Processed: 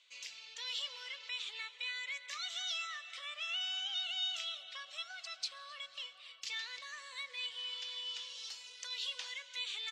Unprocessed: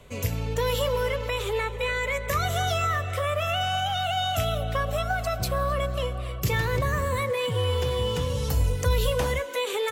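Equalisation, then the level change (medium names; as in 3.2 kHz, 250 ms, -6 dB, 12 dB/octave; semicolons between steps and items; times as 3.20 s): ladder band-pass 5.3 kHz, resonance 25%; distance through air 130 m; +11.0 dB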